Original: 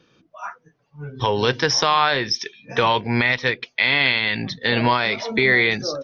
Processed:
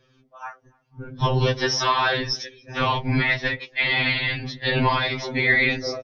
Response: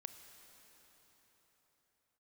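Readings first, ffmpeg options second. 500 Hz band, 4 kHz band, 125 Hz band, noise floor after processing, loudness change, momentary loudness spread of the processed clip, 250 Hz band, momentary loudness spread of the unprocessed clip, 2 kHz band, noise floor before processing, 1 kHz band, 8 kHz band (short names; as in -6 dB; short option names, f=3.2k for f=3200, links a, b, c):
-4.0 dB, -3.5 dB, +2.5 dB, -63 dBFS, -2.5 dB, 18 LU, -2.5 dB, 17 LU, -2.5 dB, -65 dBFS, -3.5 dB, n/a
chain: -filter_complex "[0:a]equalizer=f=95:t=o:w=0.55:g=14.5,bandreject=f=69.14:t=h:w=4,bandreject=f=138.28:t=h:w=4,bandreject=f=207.42:t=h:w=4,bandreject=f=276.56:t=h:w=4,bandreject=f=345.7:t=h:w=4,bandreject=f=414.84:t=h:w=4,bandreject=f=483.98:t=h:w=4,bandreject=f=553.12:t=h:w=4,bandreject=f=622.26:t=h:w=4,bandreject=f=691.4:t=h:w=4,afftfilt=real='hypot(re,im)*cos(2*PI*random(0))':imag='hypot(re,im)*sin(2*PI*random(1))':win_size=512:overlap=0.75,asplit=2[a][b];[b]adelay=285.7,volume=-29dB,highshelf=f=4k:g=-6.43[c];[a][c]amix=inputs=2:normalize=0,afftfilt=real='re*2.45*eq(mod(b,6),0)':imag='im*2.45*eq(mod(b,6),0)':win_size=2048:overlap=0.75,volume=5dB"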